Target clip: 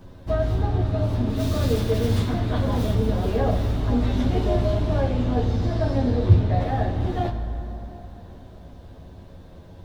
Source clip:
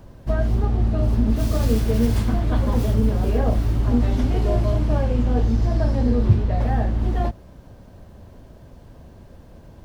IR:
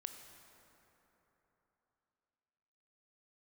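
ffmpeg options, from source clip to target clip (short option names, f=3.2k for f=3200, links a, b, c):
-filter_complex "[0:a]asplit=2[a][b];[b]equalizer=f=3.7k:t=o:w=0.29:g=9.5[c];[1:a]atrim=start_sample=2205,lowpass=5.6k,adelay=11[d];[c][d]afir=irnorm=-1:irlink=0,volume=6dB[e];[a][e]amix=inputs=2:normalize=0,volume=-4dB"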